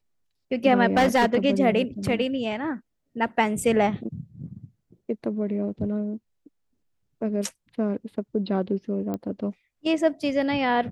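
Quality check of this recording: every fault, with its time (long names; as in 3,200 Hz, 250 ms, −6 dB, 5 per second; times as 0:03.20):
0:00.97–0:01.36: clipping −14.5 dBFS
0:09.14: click −18 dBFS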